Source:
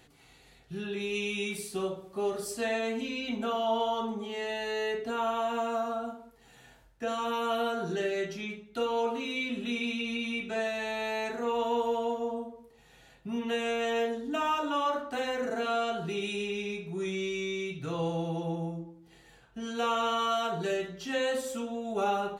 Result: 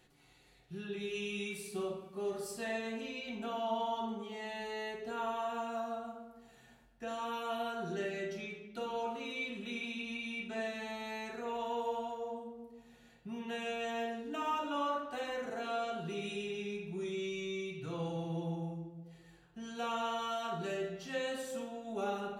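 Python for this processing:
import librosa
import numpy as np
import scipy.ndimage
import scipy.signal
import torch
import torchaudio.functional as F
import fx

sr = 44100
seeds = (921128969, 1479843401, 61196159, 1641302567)

y = fx.room_shoebox(x, sr, seeds[0], volume_m3=1100.0, walls='mixed', distance_m=0.96)
y = F.gain(torch.from_numpy(y), -8.0).numpy()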